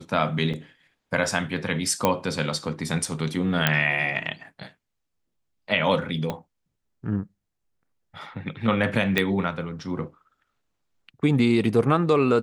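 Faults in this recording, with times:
0.53–0.54 s: dropout 6.2 ms
2.05 s: pop -6 dBFS
3.67 s: pop -4 dBFS
6.30 s: pop -15 dBFS
9.18 s: pop -7 dBFS

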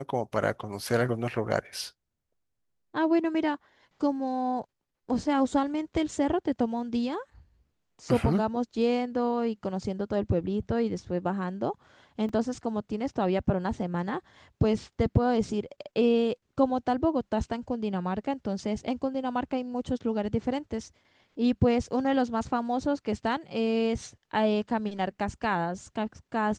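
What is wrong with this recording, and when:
12.29 s: dropout 3.1 ms

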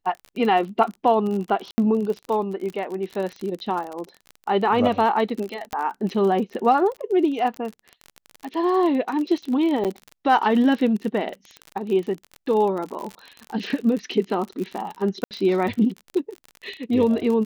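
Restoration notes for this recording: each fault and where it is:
crackle 43 per s -28 dBFS
1.71–1.78 s: dropout 70 ms
5.73 s: pop -13 dBFS
9.84–9.85 s: dropout 7.8 ms
15.24–15.31 s: dropout 68 ms

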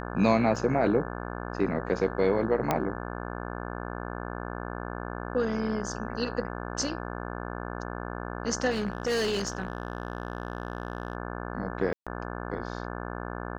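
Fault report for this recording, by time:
buzz 60 Hz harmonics 29 -36 dBFS
0.56 s: dropout 3.9 ms
2.71 s: pop -11 dBFS
8.70–11.15 s: clipped -24 dBFS
11.93–12.07 s: dropout 136 ms

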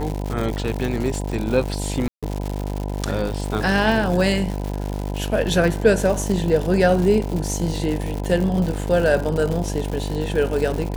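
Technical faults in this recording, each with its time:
buzz 50 Hz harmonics 20 -26 dBFS
crackle 190 per s -25 dBFS
2.08–2.23 s: dropout 146 ms

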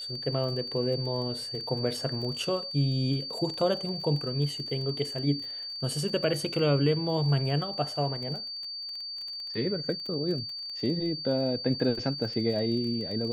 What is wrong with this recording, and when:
crackle 20 per s -36 dBFS
whine 4.6 kHz -35 dBFS

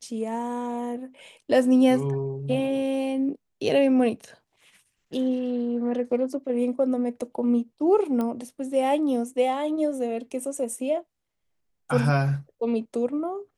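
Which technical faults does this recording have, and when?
8.21 s: pop -17 dBFS

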